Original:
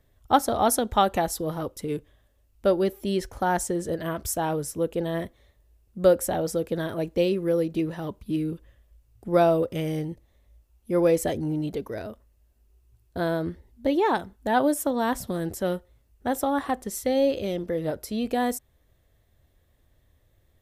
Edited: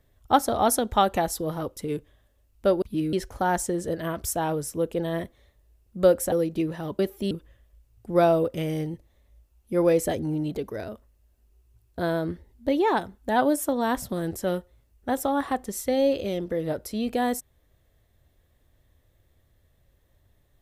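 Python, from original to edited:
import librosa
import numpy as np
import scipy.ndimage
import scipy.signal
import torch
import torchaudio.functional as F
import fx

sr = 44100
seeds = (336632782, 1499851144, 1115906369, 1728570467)

y = fx.edit(x, sr, fx.swap(start_s=2.82, length_s=0.32, other_s=8.18, other_length_s=0.31),
    fx.cut(start_s=6.33, length_s=1.18), tone=tone)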